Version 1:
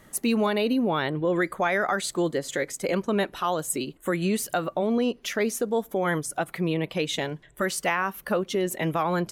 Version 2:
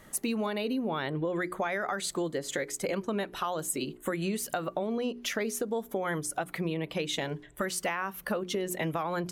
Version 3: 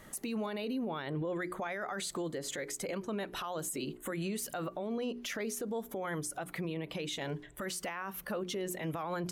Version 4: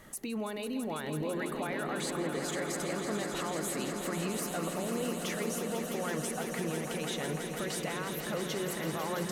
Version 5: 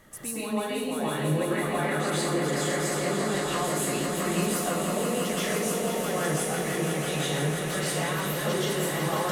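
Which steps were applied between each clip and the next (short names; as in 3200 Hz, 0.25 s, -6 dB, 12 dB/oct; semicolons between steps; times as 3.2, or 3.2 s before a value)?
notches 60/120/180/240/300/360/420 Hz; compressor, threshold -28 dBFS, peak gain reduction 8.5 dB
limiter -29 dBFS, peak gain reduction 11.5 dB
swelling echo 0.166 s, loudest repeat 5, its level -9 dB
plate-style reverb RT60 0.64 s, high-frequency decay 1×, pre-delay 0.105 s, DRR -9 dB; gain -2 dB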